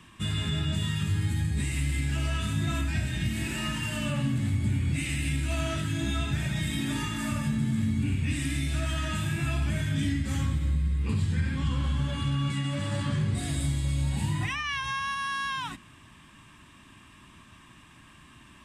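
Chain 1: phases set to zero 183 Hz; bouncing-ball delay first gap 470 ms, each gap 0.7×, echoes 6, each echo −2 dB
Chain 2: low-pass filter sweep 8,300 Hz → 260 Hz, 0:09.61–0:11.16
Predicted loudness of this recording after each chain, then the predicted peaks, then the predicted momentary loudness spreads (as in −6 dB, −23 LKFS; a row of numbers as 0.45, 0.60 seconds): −27.0, −28.0 LKFS; −11.5, −15.0 dBFS; 5, 4 LU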